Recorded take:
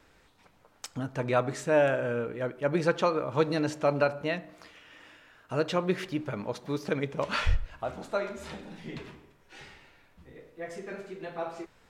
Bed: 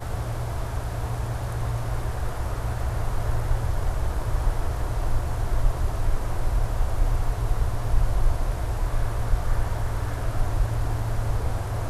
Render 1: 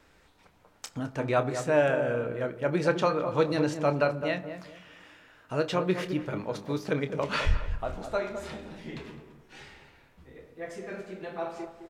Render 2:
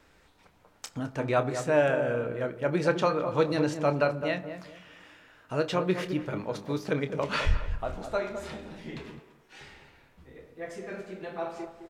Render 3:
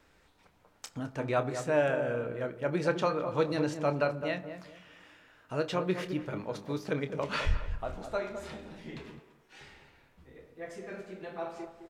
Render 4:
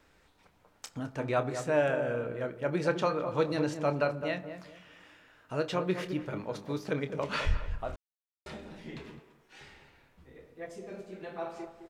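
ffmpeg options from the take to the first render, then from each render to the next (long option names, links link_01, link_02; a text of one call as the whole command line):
ffmpeg -i in.wav -filter_complex "[0:a]asplit=2[link_01][link_02];[link_02]adelay=27,volume=-11.5dB[link_03];[link_01][link_03]amix=inputs=2:normalize=0,asplit=2[link_04][link_05];[link_05]adelay=211,lowpass=frequency=980:poles=1,volume=-7.5dB,asplit=2[link_06][link_07];[link_07]adelay=211,lowpass=frequency=980:poles=1,volume=0.32,asplit=2[link_08][link_09];[link_09]adelay=211,lowpass=frequency=980:poles=1,volume=0.32,asplit=2[link_10][link_11];[link_11]adelay=211,lowpass=frequency=980:poles=1,volume=0.32[link_12];[link_04][link_06][link_08][link_10][link_12]amix=inputs=5:normalize=0" out.wav
ffmpeg -i in.wav -filter_complex "[0:a]asettb=1/sr,asplit=3[link_01][link_02][link_03];[link_01]atrim=end=9.194[link_04];[link_02]atrim=start=9.19:end=9.61,asetpts=PTS-STARTPTS,afade=type=in:duration=0.004:curve=qsin,afade=type=out:start_time=0.416:duration=0.004:curve=qsin,lowshelf=frequency=330:gain=-10.5[link_05];[link_03]atrim=start=9.606[link_06];[link_04][link_05]acrossfade=duration=0.004:curve1=hsin:curve2=qsin[link_07];[link_07][link_06]acrossfade=duration=0.004:curve1=qsin:curve2=hsin" out.wav
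ffmpeg -i in.wav -af "volume=-3.5dB" out.wav
ffmpeg -i in.wav -filter_complex "[0:a]asettb=1/sr,asplit=3[link_01][link_02][link_03];[link_01]atrim=end=10.664[link_04];[link_02]atrim=start=10.66:end=11.13,asetpts=PTS-STARTPTS,afade=type=in:duration=0.004:curve=qsin,afade=type=out:start_time=0.466:duration=0.004:curve=qsin,equalizer=frequency=1700:width=1.3:gain=-10[link_05];[link_03]atrim=start=11.126[link_06];[link_04][link_05]acrossfade=duration=0.004:curve1=hsin:curve2=qsin[link_07];[link_07][link_06]acrossfade=duration=0.004:curve1=qsin:curve2=hsin,asplit=3[link_08][link_09][link_10];[link_08]atrim=end=7.96,asetpts=PTS-STARTPTS,afade=type=out:start_time=7.956:duration=0.004:curve=hsin[link_11];[link_09]atrim=start=7.96:end=8.46,asetpts=PTS-STARTPTS,volume=0[link_12];[link_10]atrim=start=8.46,asetpts=PTS-STARTPTS,afade=type=in:duration=0.004:curve=hsin[link_13];[link_11][link_12][link_13]concat=n=3:v=0:a=1" out.wav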